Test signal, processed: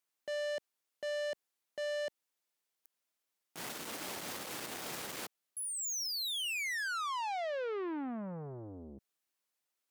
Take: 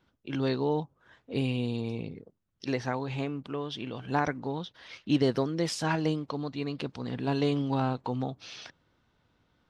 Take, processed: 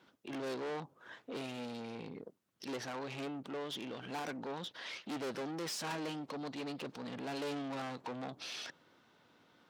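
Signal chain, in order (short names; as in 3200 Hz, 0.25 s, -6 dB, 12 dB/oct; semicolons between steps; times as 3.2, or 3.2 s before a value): tube stage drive 38 dB, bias 0.4; limiter -42.5 dBFS; HPF 230 Hz 12 dB/oct; gain +7.5 dB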